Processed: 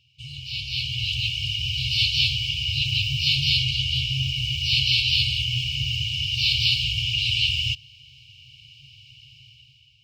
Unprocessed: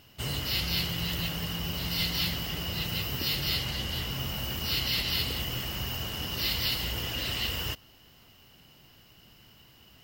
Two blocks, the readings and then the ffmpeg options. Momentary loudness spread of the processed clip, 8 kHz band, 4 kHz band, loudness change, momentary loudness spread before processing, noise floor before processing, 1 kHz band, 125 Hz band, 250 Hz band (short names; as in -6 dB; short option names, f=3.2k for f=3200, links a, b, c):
8 LU, +0.5 dB, +9.5 dB, +8.0 dB, 6 LU, -57 dBFS, under -40 dB, +7.0 dB, n/a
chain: -af "highpass=110,lowpass=3.7k,dynaudnorm=f=350:g=5:m=14.5dB,afftfilt=real='re*(1-between(b*sr/4096,140,2200))':imag='im*(1-between(b*sr/4096,140,2200))':win_size=4096:overlap=0.75,volume=-1.5dB"